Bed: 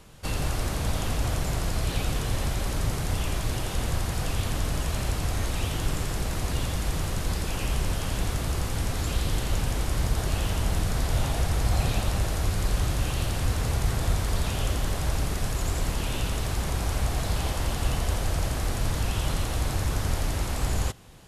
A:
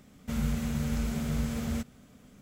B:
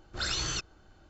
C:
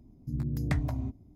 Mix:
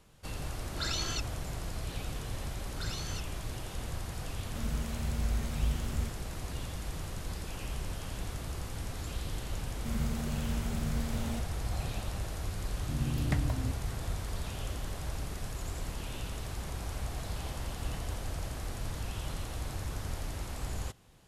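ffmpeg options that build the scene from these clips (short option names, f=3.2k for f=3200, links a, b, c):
-filter_complex "[2:a]asplit=2[a][b];[1:a]asplit=2[c][d];[3:a]asplit=2[e][f];[0:a]volume=-10.5dB[g];[a]aecho=1:1:3:0.65[h];[c]asubboost=boost=11:cutoff=81[i];[h]atrim=end=1.09,asetpts=PTS-STARTPTS,volume=-5dB,afade=t=in:d=0.004:c=hsin,afade=t=out:st=1.086:d=0.004:c=hsin,adelay=600[j];[b]atrim=end=1.09,asetpts=PTS-STARTPTS,volume=-10dB,afade=t=in:d=0.004:c=hsin,afade=t=out:st=1.086:d=0.004:c=hsin,adelay=2600[k];[i]atrim=end=2.41,asetpts=PTS-STARTPTS,volume=-8dB,afade=t=in:d=0.004:c=hsin,afade=t=out:st=2.406:d=0.004:c=hsin,adelay=4270[l];[d]atrim=end=2.41,asetpts=PTS-STARTPTS,volume=-5.5dB,afade=t=in:d=0.004:c=hsin,afade=t=out:st=2.406:d=0.004:c=hsin,adelay=9570[m];[e]atrim=end=1.35,asetpts=PTS-STARTPTS,volume=-1.5dB,afade=t=in:d=0.004:c=hsin,afade=t=out:st=1.346:d=0.004:c=hsin,adelay=12610[n];[f]atrim=end=1.35,asetpts=PTS-STARTPTS,volume=-17.5dB,afade=t=in:d=0.004:c=hsin,afade=t=out:st=1.346:d=0.004:c=hsin,adelay=17230[o];[g][j][k][l][m][n][o]amix=inputs=7:normalize=0"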